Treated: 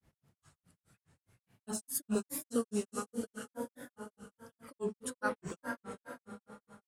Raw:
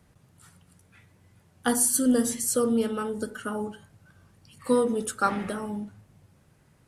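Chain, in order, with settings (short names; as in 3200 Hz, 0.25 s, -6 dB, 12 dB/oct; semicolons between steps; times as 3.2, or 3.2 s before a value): diffused feedback echo 0.472 s, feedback 42%, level -5.5 dB; grains 0.149 s, grains 4.8/s, spray 23 ms, pitch spread up and down by 3 st; gain -7.5 dB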